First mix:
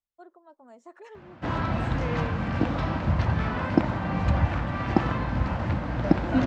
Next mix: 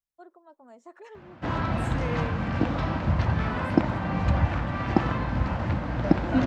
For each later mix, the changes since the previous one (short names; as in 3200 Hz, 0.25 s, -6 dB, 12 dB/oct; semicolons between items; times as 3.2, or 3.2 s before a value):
second voice: remove air absorption 120 m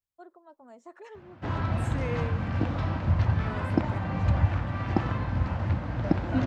background -4.5 dB; master: add bell 96 Hz +9 dB 0.53 oct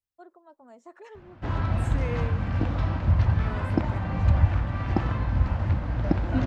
background: remove HPF 88 Hz